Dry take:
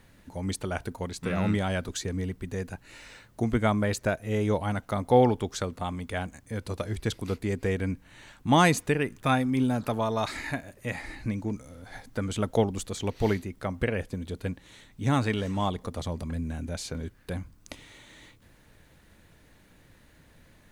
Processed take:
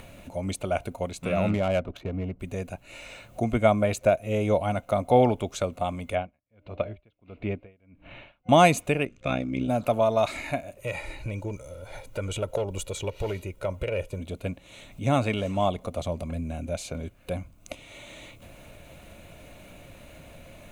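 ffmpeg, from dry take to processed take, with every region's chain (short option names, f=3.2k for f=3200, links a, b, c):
-filter_complex "[0:a]asettb=1/sr,asplit=3[a][b][c];[a]atrim=end=1.494[d];[b]atrim=start=1.49:end=2.4,asetpts=PTS-STARTPTS,afade=t=in:d=0.004:c=qsin,afade=t=out:st=0.906:d=0.004:c=qsin,lowpass=4.8k,adynamicsmooth=sensitivity=5.5:basefreq=850[e];[c]atrim=start=2.396[f];[d][e]acrossfade=d=0.004:c1=hsin:c2=qsin[g];[g][f]acrossfade=d=0.004:c1=qsin:c2=hsin,asettb=1/sr,asplit=3[h][i][j];[h]atrim=end=6.154[k];[i]atrim=start=6.15:end=8.49,asetpts=PTS-STARTPTS,afade=t=in:d=0.004:c=qsin,afade=t=out:st=2.336:d=0.004:c=qsin,lowpass=f=3.2k:w=0.5412,lowpass=f=3.2k:w=1.3066,bandreject=f=301.7:t=h:w=4,bandreject=f=603.4:t=h:w=4,aeval=exprs='val(0)*pow(10,-38*(0.5-0.5*cos(2*PI*1.5*n/s))/20)':c=same[l];[j]atrim=start=8.486[m];[k][l]acrossfade=d=0.004:c1=hsin:c2=qsin[n];[n][m]acrossfade=d=0.004:c1=qsin:c2=hsin,asettb=1/sr,asplit=3[o][p][q];[o]atrim=end=9.054[r];[p]atrim=start=9.05:end=9.69,asetpts=PTS-STARTPTS,afade=t=in:d=0.004:c=qsin,afade=t=out:st=0.636:d=0.004:c=qsin,lowpass=f=6.7k:w=0.5412,lowpass=f=6.7k:w=1.3066,equalizer=f=900:t=o:w=0.68:g=-9,tremolo=f=62:d=0.824[s];[q]atrim=start=9.686[t];[r][s]acrossfade=d=0.004:c1=hsin:c2=qsin[u];[u][t]acrossfade=d=0.004:c1=qsin:c2=hsin,asettb=1/sr,asplit=3[v][w][x];[v]atrim=end=10.794[y];[w]atrim=start=10.79:end=14.2,asetpts=PTS-STARTPTS,afade=t=in:d=0.004:c=qsin,afade=t=out:st=3.406:d=0.004:c=qsin,aecho=1:1:2.1:0.72,atrim=end_sample=150381,acompressor=threshold=-27dB:ratio=3:attack=3.2:release=140:knee=1:detection=peak,asoftclip=type=hard:threshold=-24dB[z];[x]atrim=start=14.196[aa];[y][z]acrossfade=d=0.004:c1=hsin:c2=qsin[ab];[ab][aa]acrossfade=d=0.004:c1=qsin:c2=hsin,superequalizer=8b=2.82:11b=0.501:12b=1.78:14b=0.562,acompressor=mode=upward:threshold=-37dB:ratio=2.5"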